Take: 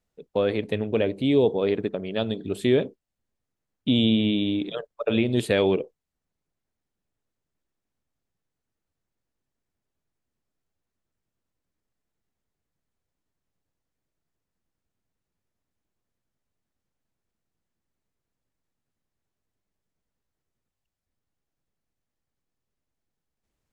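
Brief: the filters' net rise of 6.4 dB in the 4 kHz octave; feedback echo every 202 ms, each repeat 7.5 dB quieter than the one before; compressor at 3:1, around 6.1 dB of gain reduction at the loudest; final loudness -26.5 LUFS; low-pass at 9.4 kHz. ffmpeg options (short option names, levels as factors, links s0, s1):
-af "lowpass=9400,equalizer=f=4000:t=o:g=8,acompressor=threshold=0.0708:ratio=3,aecho=1:1:202|404|606|808|1010:0.422|0.177|0.0744|0.0312|0.0131,volume=1.12"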